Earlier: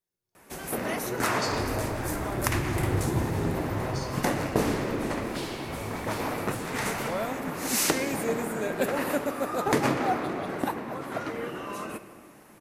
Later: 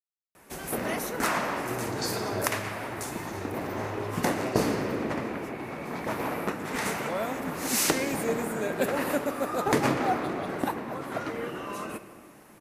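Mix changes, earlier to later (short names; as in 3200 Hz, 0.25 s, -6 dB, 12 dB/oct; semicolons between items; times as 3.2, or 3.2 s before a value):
speech: entry +0.60 s; second sound: muted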